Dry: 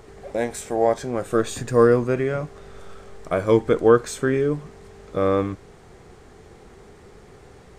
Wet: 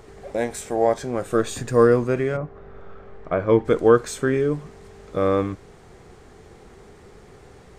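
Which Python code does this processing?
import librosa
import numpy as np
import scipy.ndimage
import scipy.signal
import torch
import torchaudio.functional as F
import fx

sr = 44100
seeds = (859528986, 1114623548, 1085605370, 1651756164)

y = fx.lowpass(x, sr, hz=fx.line((2.36, 1400.0), (3.64, 2700.0)), slope=12, at=(2.36, 3.64), fade=0.02)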